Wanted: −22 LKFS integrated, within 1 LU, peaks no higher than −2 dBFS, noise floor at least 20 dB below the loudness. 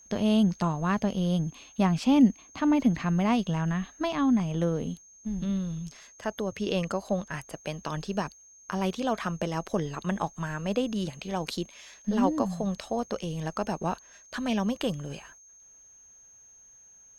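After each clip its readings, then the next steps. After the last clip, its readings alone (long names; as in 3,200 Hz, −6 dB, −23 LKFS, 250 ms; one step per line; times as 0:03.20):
interfering tone 6,400 Hz; level of the tone −52 dBFS; integrated loudness −29.0 LKFS; sample peak −10.5 dBFS; target loudness −22.0 LKFS
→ notch filter 6,400 Hz, Q 30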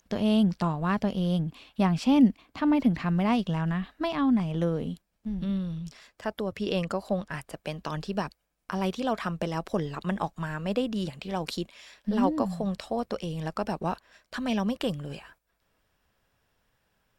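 interfering tone none found; integrated loudness −29.0 LKFS; sample peak −10.5 dBFS; target loudness −22.0 LKFS
→ level +7 dB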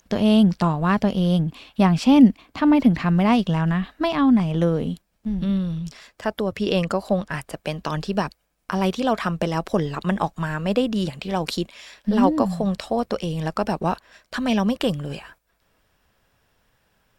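integrated loudness −22.0 LKFS; sample peak −3.5 dBFS; background noise floor −69 dBFS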